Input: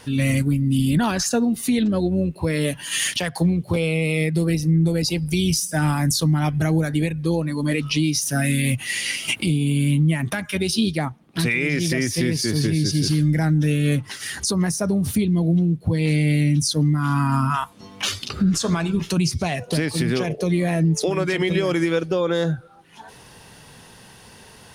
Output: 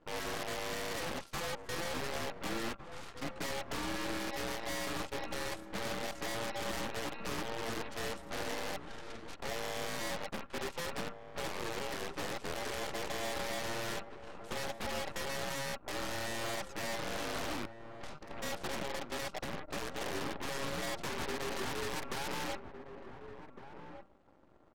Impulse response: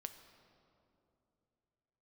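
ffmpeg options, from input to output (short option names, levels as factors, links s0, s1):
-filter_complex "[0:a]aeval=exprs='val(0)*sin(2*PI*890*n/s)':c=same,bandpass=f=350:t=q:w=1.9:csg=0,aeval=exprs='0.0237*(abs(mod(val(0)/0.0237+3,4)-2)-1)':c=same,aeval=exprs='0.0237*(cos(1*acos(clip(val(0)/0.0237,-1,1)))-cos(1*PI/2))+0.0106*(cos(3*acos(clip(val(0)/0.0237,-1,1)))-cos(3*PI/2))+0.000237*(cos(7*acos(clip(val(0)/0.0237,-1,1)))-cos(7*PI/2))+0.00531*(cos(8*acos(clip(val(0)/0.0237,-1,1)))-cos(8*PI/2))':c=same,asetrate=34006,aresample=44100,atempo=1.29684,asplit=2[s0][s1];[s1]adelay=1458,volume=0.355,highshelf=f=4000:g=-32.8[s2];[s0][s2]amix=inputs=2:normalize=0"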